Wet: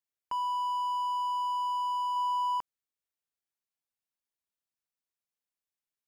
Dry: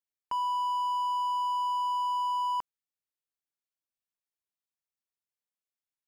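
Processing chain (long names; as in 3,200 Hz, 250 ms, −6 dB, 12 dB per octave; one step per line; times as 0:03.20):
0:02.16–0:02.58: low-shelf EQ 500 Hz +8 dB
level −1.5 dB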